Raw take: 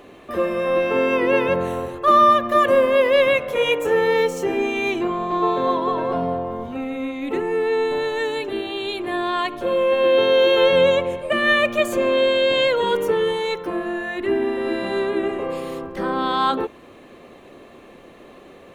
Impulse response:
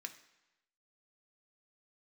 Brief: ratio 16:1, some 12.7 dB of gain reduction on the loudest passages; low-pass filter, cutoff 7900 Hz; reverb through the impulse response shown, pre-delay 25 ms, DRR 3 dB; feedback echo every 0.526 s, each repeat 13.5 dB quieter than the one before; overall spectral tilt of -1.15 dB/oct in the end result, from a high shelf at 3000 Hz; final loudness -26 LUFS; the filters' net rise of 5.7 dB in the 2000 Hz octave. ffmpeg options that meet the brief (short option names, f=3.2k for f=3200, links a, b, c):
-filter_complex "[0:a]lowpass=7.9k,equalizer=f=2k:t=o:g=3.5,highshelf=f=3k:g=9,acompressor=threshold=-21dB:ratio=16,aecho=1:1:526|1052:0.211|0.0444,asplit=2[a][b];[1:a]atrim=start_sample=2205,adelay=25[c];[b][c]afir=irnorm=-1:irlink=0,volume=0dB[d];[a][d]amix=inputs=2:normalize=0,volume=-3dB"